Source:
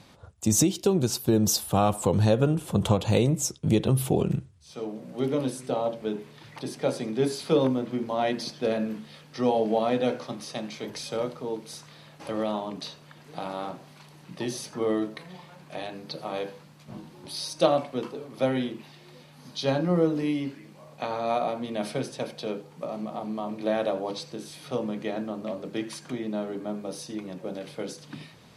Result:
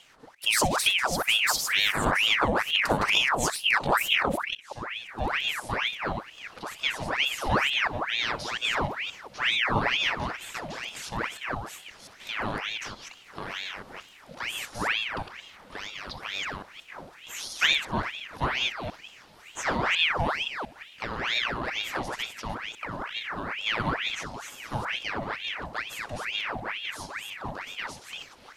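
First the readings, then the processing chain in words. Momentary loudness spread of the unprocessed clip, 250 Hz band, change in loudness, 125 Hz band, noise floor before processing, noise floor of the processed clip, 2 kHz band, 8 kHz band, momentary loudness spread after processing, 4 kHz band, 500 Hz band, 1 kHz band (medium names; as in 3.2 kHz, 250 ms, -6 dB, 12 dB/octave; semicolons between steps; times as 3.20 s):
15 LU, -10.0 dB, +1.0 dB, -8.5 dB, -52 dBFS, -52 dBFS, +15.5 dB, -2.0 dB, 17 LU, +10.5 dB, -8.5 dB, +3.0 dB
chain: chunks repeated in reverse 175 ms, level -3.5 dB; flutter echo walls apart 10.8 m, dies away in 0.22 s; ring modulator with a swept carrier 1.7 kHz, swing 80%, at 2.2 Hz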